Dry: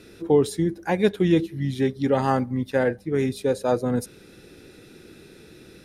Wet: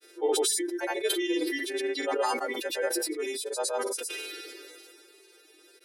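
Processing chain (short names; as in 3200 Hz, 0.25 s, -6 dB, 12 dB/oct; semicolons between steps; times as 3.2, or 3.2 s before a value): frequency quantiser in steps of 2 st; reverb removal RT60 0.99 s; steep high-pass 320 Hz 72 dB/oct; grains, pitch spread up and down by 0 st; sustainer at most 22 dB/s; gain -6 dB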